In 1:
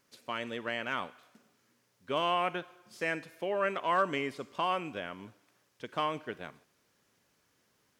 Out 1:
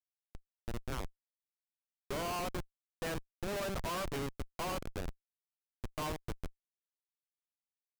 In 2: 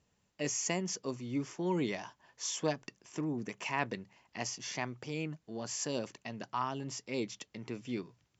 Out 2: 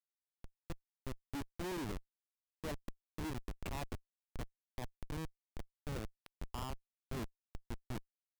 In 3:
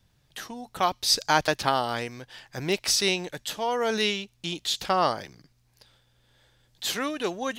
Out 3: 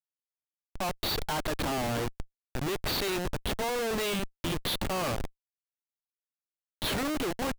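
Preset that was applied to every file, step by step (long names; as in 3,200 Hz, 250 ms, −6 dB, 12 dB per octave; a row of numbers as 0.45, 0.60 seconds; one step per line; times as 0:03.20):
fade in at the beginning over 1.27 s
linear-phase brick-wall band-pass 180–4,700 Hz
comparator with hysteresis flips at −32.5 dBFS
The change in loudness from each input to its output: −6.5, −9.5, −5.5 LU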